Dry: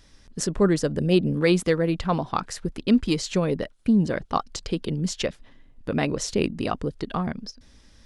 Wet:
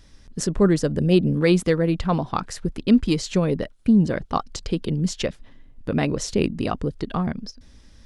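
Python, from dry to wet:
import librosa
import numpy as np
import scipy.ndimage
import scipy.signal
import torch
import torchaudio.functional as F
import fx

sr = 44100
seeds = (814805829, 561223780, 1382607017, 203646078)

y = fx.low_shelf(x, sr, hz=280.0, db=5.0)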